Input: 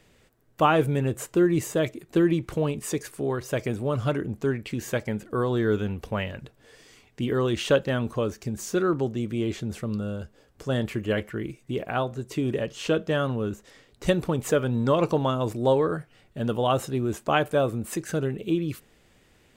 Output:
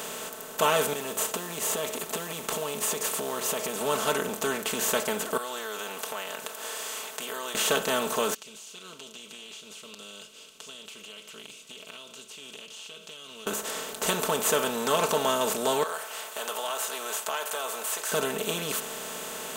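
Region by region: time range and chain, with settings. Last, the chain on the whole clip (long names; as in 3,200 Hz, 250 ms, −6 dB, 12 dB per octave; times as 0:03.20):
0:00.93–0:03.81: notch filter 1,500 Hz, Q 6.7 + downward compressor 10 to 1, threshold −35 dBFS + log-companded quantiser 8 bits
0:05.37–0:07.55: high-pass filter 850 Hz + downward compressor 2.5 to 1, threshold −55 dBFS
0:08.34–0:13.47: elliptic high-pass filter 2,800 Hz + downward compressor 5 to 1, threshold −54 dBFS + head-to-tape spacing loss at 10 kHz 38 dB
0:15.83–0:18.12: high-pass filter 710 Hz 24 dB per octave + downward compressor 2 to 1, threshold −51 dBFS
whole clip: compressor on every frequency bin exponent 0.4; RIAA equalisation recording; comb filter 4.6 ms, depth 77%; level −7.5 dB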